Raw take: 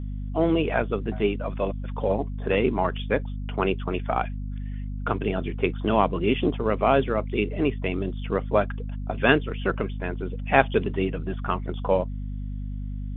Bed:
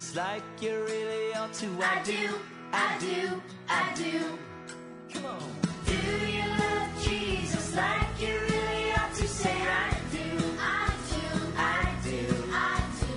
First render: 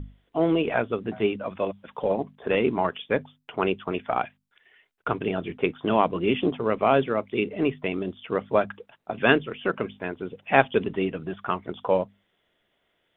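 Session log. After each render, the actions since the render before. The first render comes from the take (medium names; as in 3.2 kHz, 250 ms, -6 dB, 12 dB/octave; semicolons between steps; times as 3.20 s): hum notches 50/100/150/200/250 Hz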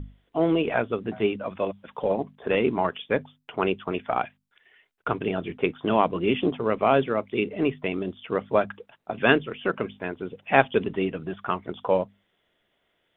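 no audible change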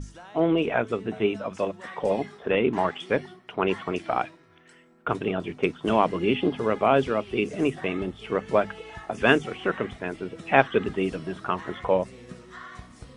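add bed -14 dB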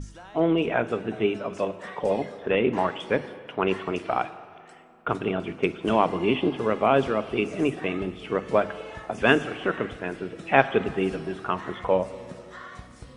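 spring tank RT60 2.2 s, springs 42/50 ms, chirp 60 ms, DRR 14 dB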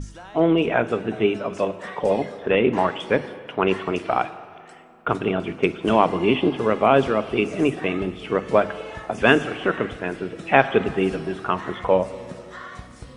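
trim +4 dB; peak limiter -1 dBFS, peak gain reduction 2.5 dB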